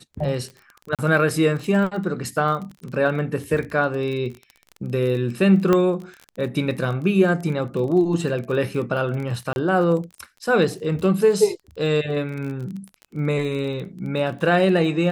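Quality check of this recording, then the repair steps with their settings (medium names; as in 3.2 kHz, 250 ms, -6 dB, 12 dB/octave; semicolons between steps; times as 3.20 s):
crackle 28 per s -30 dBFS
0.95–0.99 s: dropout 37 ms
2.71 s: dropout 4.3 ms
5.73 s: pop -7 dBFS
9.53–9.56 s: dropout 31 ms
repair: de-click; interpolate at 0.95 s, 37 ms; interpolate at 2.71 s, 4.3 ms; interpolate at 9.53 s, 31 ms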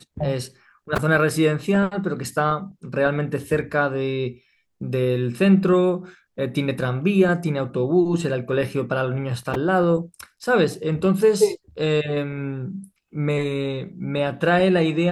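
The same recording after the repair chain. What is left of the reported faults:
nothing left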